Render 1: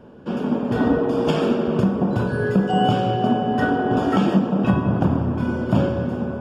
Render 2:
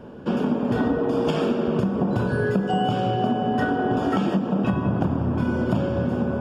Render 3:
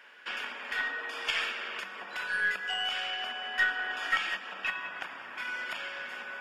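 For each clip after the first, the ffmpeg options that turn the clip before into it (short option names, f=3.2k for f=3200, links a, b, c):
-af "acompressor=threshold=-23dB:ratio=6,volume=4dB"
-af "highpass=f=2k:t=q:w=5.9,aeval=exprs='0.2*(cos(1*acos(clip(val(0)/0.2,-1,1)))-cos(1*PI/2))+0.00708*(cos(4*acos(clip(val(0)/0.2,-1,1)))-cos(4*PI/2))':c=same"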